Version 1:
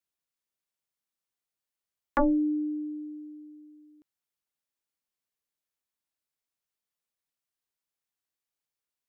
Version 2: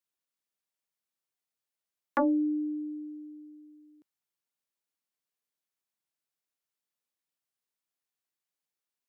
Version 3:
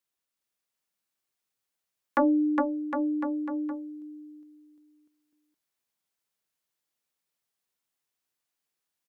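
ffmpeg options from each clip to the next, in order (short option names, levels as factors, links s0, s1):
-af "highpass=120,volume=0.841"
-af "aecho=1:1:410|758.5|1055|1307|1521:0.631|0.398|0.251|0.158|0.1,volume=1.41"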